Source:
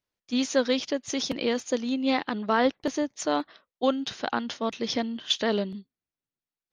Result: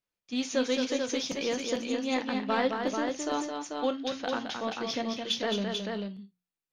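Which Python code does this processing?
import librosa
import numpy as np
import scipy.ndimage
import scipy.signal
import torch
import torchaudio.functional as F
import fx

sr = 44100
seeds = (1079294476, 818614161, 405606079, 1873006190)

p1 = fx.peak_eq(x, sr, hz=2500.0, db=2.5, octaves=0.44)
p2 = fx.hum_notches(p1, sr, base_hz=60, count=3)
p3 = 10.0 ** (-25.5 / 20.0) * np.tanh(p2 / 10.0 ** (-25.5 / 20.0))
p4 = p2 + (p3 * 10.0 ** (-10.0 / 20.0))
p5 = fx.echo_multitap(p4, sr, ms=(216, 440), db=(-5.5, -5.0))
p6 = fx.rev_gated(p5, sr, seeds[0], gate_ms=90, shape='falling', drr_db=7.5)
y = p6 * 10.0 ** (-7.0 / 20.0)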